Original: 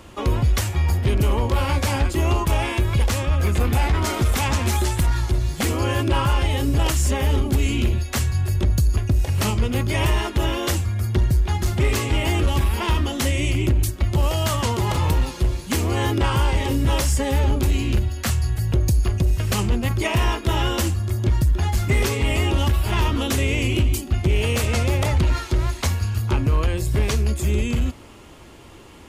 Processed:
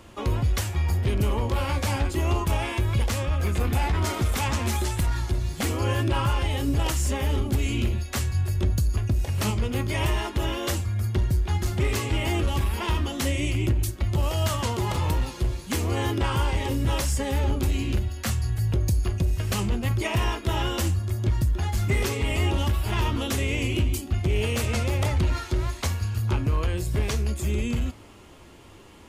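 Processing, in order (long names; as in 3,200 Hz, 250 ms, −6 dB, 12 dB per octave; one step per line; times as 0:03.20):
0:01.56–0:03.44: surface crackle 170 per second −49 dBFS
flanger 0.65 Hz, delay 8.5 ms, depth 3.2 ms, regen +79%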